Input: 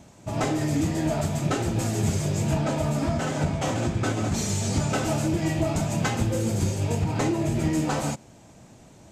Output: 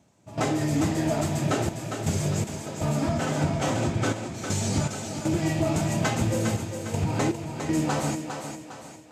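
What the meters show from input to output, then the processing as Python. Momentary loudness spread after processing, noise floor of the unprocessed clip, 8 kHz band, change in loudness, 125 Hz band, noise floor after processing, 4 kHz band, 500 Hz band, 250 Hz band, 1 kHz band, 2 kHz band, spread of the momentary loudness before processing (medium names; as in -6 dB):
7 LU, -51 dBFS, -0.5 dB, -1.0 dB, -2.0 dB, -44 dBFS, -0.5 dB, -0.5 dB, -1.0 dB, 0.0 dB, 0.0 dB, 2 LU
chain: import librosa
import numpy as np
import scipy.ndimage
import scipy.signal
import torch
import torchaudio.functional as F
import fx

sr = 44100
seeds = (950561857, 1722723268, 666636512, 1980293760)

y = scipy.signal.sosfilt(scipy.signal.butter(2, 76.0, 'highpass', fs=sr, output='sos'), x)
y = fx.step_gate(y, sr, bpm=80, pattern='..xxxxxxx..xx', floor_db=-12.0, edge_ms=4.5)
y = fx.echo_thinned(y, sr, ms=405, feedback_pct=44, hz=230.0, wet_db=-6.5)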